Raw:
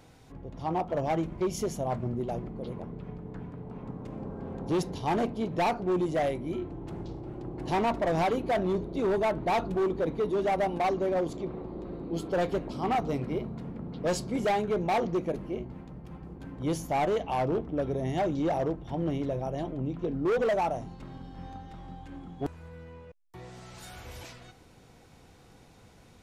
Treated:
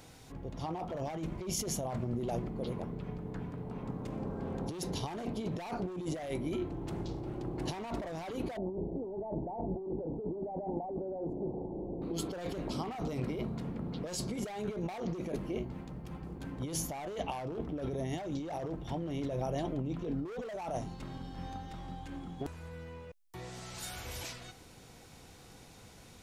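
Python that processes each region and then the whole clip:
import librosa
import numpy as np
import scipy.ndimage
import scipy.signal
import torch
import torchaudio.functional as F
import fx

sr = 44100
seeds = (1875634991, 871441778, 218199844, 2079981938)

y = fx.chain(x, sr, fx.ellip_lowpass(hz=870.0, order=4, stop_db=40),
    fx.hum_notches(base_hz=60, count=6), at=(8.57, 12.02))
y = fx.high_shelf(y, sr, hz=3100.0, db=8.0)
y = fx.over_compress(y, sr, threshold_db=-33.0, ratio=-1.0)
y = F.gain(torch.from_numpy(y), -3.5).numpy()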